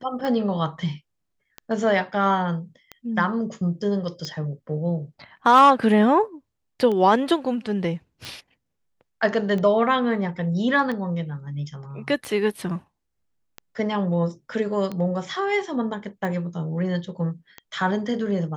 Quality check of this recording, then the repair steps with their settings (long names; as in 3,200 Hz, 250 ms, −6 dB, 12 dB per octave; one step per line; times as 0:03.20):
scratch tick 45 rpm −18 dBFS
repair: click removal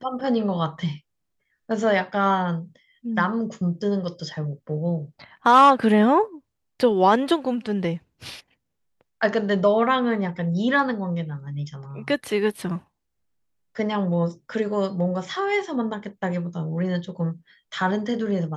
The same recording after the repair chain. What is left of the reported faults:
none of them is left